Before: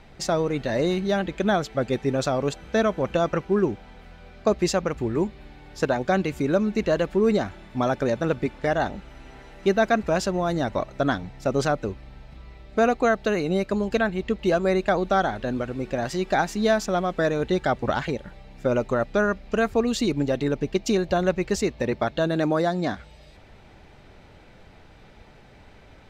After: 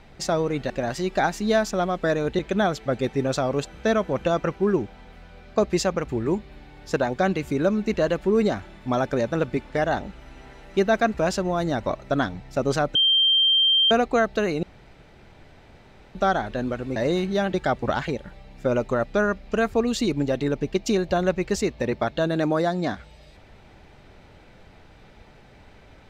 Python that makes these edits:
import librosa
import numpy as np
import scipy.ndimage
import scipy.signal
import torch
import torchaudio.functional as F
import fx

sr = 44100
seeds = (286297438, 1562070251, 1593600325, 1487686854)

y = fx.edit(x, sr, fx.swap(start_s=0.7, length_s=0.58, other_s=15.85, other_length_s=1.69),
    fx.bleep(start_s=11.84, length_s=0.96, hz=3160.0, db=-15.5),
    fx.room_tone_fill(start_s=13.52, length_s=1.52), tone=tone)